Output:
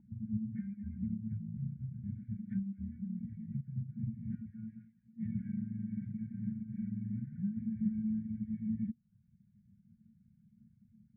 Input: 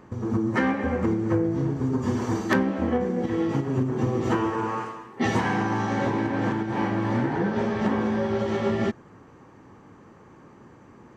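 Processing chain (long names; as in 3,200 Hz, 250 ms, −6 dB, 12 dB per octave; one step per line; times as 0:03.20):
brick-wall band-stop 230–1,400 Hz
reverb reduction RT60 0.58 s
formant resonators in series u
level +3.5 dB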